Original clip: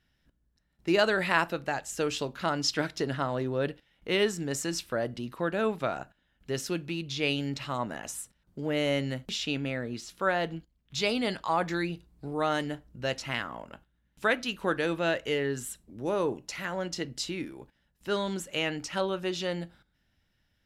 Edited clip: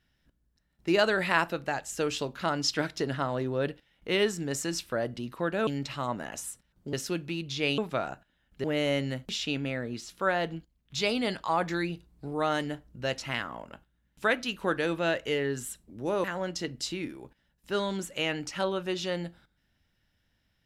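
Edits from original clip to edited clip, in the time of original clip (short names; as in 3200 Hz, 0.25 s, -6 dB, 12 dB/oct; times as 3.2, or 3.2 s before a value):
5.67–6.53 swap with 7.38–8.64
16.24–16.61 cut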